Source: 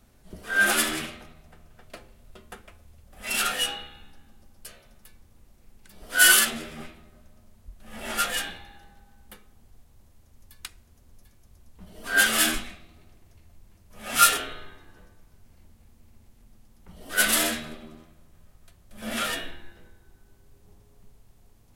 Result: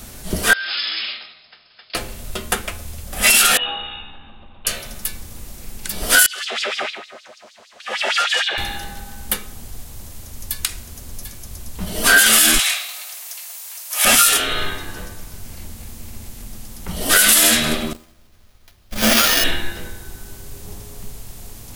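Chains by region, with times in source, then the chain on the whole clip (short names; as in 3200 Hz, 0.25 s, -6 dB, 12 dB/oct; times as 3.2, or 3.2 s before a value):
0.53–1.95 compressor, threshold -34 dBFS + brick-wall FIR low-pass 5300 Hz + differentiator
3.57–4.67 rippled Chebyshev low-pass 3800 Hz, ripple 9 dB + dynamic EQ 2700 Hz, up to -7 dB, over -43 dBFS, Q 0.92 + compressor 1.5:1, threshold -56 dBFS
6.26–8.58 LFO high-pass sine 6.5 Hz 460–4700 Hz + compressor 3:1, threshold -40 dBFS + air absorption 140 m
12.59–14.05 HPF 660 Hz 24 dB/oct + tilt +2.5 dB/oct
17.93–19.44 gate -45 dBFS, range -17 dB + bell 160 Hz -7 dB 0.29 oct + sample-rate reducer 8100 Hz
whole clip: high shelf 2900 Hz +10.5 dB; compressor 4:1, threshold -27 dBFS; maximiser +20.5 dB; gain -1 dB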